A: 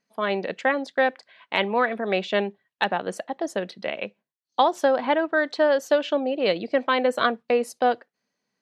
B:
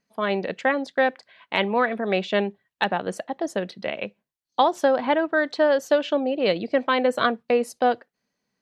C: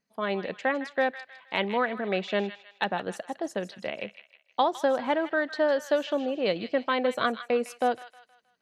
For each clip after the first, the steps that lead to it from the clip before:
low shelf 120 Hz +11.5 dB
thin delay 0.157 s, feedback 40%, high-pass 1400 Hz, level -10 dB; gain -5 dB

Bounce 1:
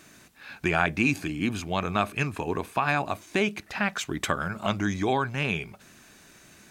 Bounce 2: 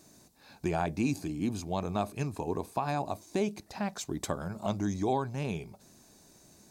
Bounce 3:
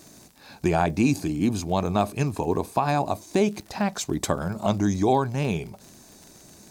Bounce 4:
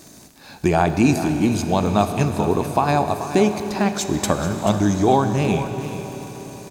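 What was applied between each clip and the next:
band shelf 2000 Hz -12.5 dB; gain -3.5 dB
crackle 46/s -44 dBFS; gain +8.5 dB
echo 0.434 s -12 dB; on a send at -8 dB: reverb RT60 5.5 s, pre-delay 26 ms; on the sum: gain +4.5 dB

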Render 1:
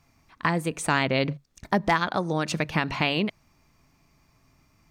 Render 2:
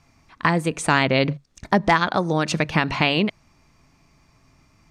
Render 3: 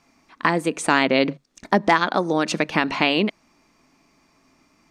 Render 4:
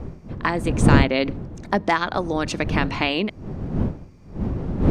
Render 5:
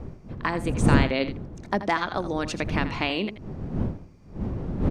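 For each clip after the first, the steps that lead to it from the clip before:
LPF 9400 Hz 12 dB/oct; gain +5 dB
resonant low shelf 170 Hz -12 dB, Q 1.5
wind noise 200 Hz -21 dBFS; gain -3 dB
echo 82 ms -12.5 dB; gain -4.5 dB

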